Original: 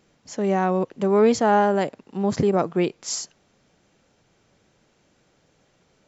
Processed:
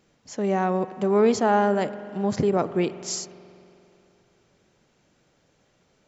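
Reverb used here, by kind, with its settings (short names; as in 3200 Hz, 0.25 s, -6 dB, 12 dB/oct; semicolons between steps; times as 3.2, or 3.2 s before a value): spring tank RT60 2.9 s, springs 44 ms, chirp 75 ms, DRR 13.5 dB; gain -2 dB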